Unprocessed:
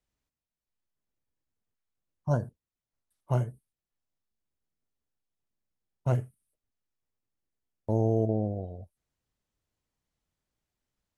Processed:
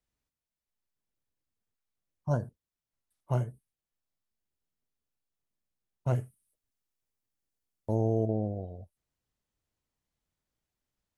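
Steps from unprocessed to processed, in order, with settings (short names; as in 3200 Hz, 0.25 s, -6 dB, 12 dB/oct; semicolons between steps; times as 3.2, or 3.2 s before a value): 6.16–7.95 high shelf 4500 Hz +6.5 dB; gain -2 dB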